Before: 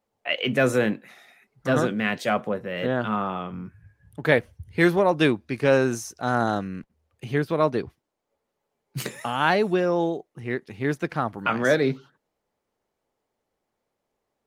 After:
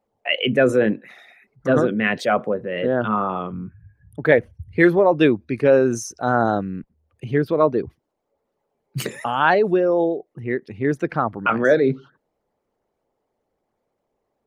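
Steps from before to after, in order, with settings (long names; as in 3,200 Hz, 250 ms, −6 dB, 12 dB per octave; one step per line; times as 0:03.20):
spectral envelope exaggerated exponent 1.5
level +4.5 dB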